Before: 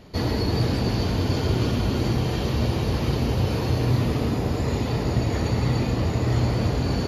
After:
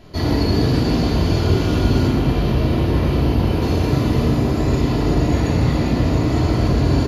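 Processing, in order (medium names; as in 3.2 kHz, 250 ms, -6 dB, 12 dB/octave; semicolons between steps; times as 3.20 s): 2.07–3.62 s: peaking EQ 6.8 kHz -8 dB 1.3 oct; feedback delay 124 ms, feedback 52%, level -9 dB; simulated room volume 850 m³, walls furnished, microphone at 3 m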